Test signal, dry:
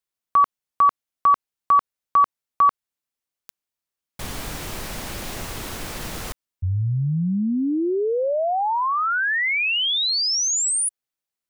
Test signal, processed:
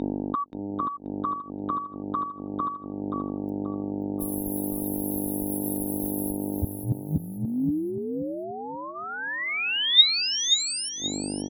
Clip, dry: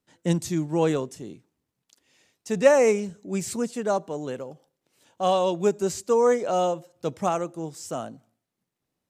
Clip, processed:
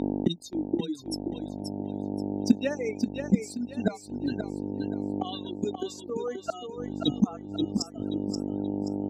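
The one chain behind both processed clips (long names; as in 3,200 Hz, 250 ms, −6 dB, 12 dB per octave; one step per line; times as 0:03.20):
spectral dynamics exaggerated over time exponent 3
noise gate −54 dBFS, range −12 dB
hum with harmonics 50 Hz, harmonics 18, −47 dBFS −5 dB per octave
reverb reduction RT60 2 s
in parallel at +1.5 dB: downward compressor 8 to 1, threshold −38 dBFS
on the sum: meter weighting curve D
floating-point word with a short mantissa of 8 bits
gate with flip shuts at −27 dBFS, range −24 dB
hollow resonant body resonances 270/3,700 Hz, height 17 dB, ringing for 30 ms
on a send: repeating echo 530 ms, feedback 31%, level −6.5 dB
on the sum: level +8.5 dB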